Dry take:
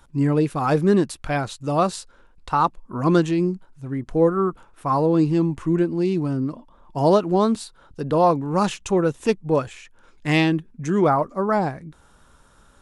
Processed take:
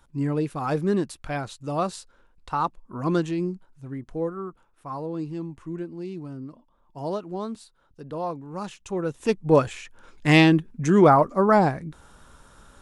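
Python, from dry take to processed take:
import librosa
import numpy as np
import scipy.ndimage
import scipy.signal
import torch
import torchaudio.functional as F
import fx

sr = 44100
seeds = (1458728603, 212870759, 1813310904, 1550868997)

y = fx.gain(x, sr, db=fx.line((3.86, -6.0), (4.43, -13.0), (8.72, -13.0), (9.24, -4.0), (9.55, 3.0)))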